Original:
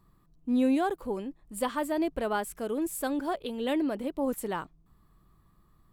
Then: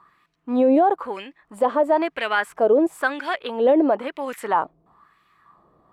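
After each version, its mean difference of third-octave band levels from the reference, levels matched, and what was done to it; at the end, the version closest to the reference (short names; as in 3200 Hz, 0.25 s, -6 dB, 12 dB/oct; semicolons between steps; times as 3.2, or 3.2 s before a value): 7.0 dB: LFO band-pass sine 1 Hz 550–2400 Hz; maximiser +30 dB; gain -8.5 dB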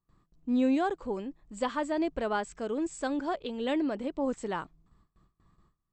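2.0 dB: Chebyshev low-pass 8000 Hz, order 8; gate with hold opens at -54 dBFS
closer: second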